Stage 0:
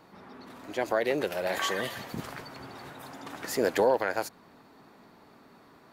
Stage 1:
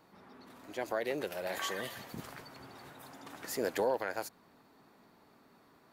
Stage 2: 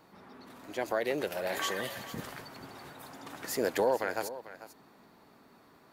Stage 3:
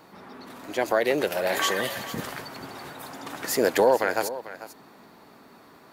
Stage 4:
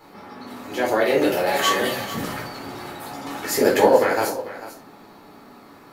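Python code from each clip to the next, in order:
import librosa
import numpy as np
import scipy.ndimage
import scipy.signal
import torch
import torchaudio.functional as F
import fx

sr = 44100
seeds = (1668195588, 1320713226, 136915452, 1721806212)

y1 = fx.high_shelf(x, sr, hz=7900.0, db=6.0)
y1 = y1 * 10.0 ** (-7.5 / 20.0)
y2 = y1 + 10.0 ** (-14.5 / 20.0) * np.pad(y1, (int(444 * sr / 1000.0), 0))[:len(y1)]
y2 = y2 * 10.0 ** (3.5 / 20.0)
y3 = fx.low_shelf(y2, sr, hz=120.0, db=-5.5)
y3 = y3 * 10.0 ** (8.5 / 20.0)
y4 = fx.room_shoebox(y3, sr, seeds[0], volume_m3=300.0, walls='furnished', distance_m=4.1)
y4 = y4 * 10.0 ** (-2.5 / 20.0)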